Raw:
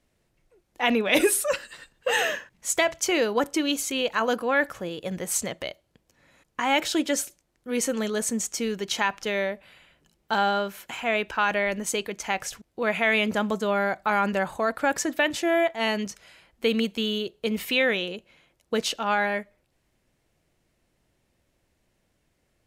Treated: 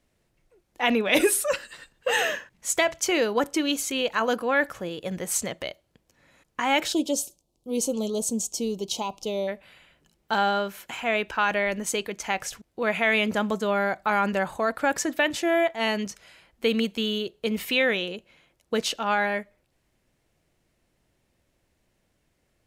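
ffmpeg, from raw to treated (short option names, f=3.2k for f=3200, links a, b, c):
-filter_complex "[0:a]asplit=3[a][b][c];[a]afade=t=out:st=6.92:d=0.02[d];[b]asuperstop=centerf=1700:order=4:qfactor=0.71,afade=t=in:st=6.92:d=0.02,afade=t=out:st=9.47:d=0.02[e];[c]afade=t=in:st=9.47:d=0.02[f];[d][e][f]amix=inputs=3:normalize=0"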